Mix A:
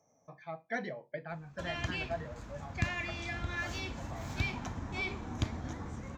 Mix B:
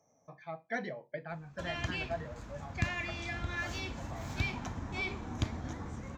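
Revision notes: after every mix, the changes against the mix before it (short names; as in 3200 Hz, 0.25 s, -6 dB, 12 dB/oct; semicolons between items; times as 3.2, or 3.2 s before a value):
none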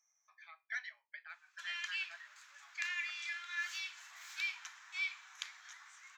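master: add inverse Chebyshev high-pass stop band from 430 Hz, stop band 60 dB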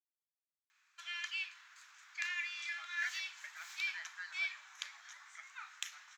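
speech: entry +2.30 s; background: entry -0.60 s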